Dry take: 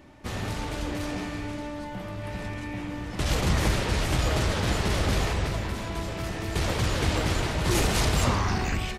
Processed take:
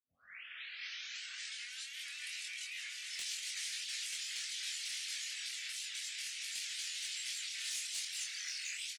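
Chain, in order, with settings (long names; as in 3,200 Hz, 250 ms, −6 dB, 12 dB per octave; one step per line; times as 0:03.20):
turntable start at the beginning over 2.02 s
gate on every frequency bin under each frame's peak −15 dB weak
inverse Chebyshev high-pass filter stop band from 1,000 Hz, stop band 40 dB
reverb reduction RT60 0.85 s
low-pass filter 10,000 Hz 24 dB per octave
high-shelf EQ 3,100 Hz +11 dB
in parallel at −3 dB: brickwall limiter −29 dBFS, peak gain reduction 17 dB
on the sum: downward compressor 4 to 1, threshold −40 dBFS, peak gain reduction 17 dB
hard clipping −31 dBFS, distortion −29 dB
double-tracking delay 23 ms −2.5 dB
on a send: feedback delay with all-pass diffusion 573 ms, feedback 49%, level −13 dB
on the sum: wow of a warped record 78 rpm, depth 100 cents
level −3 dB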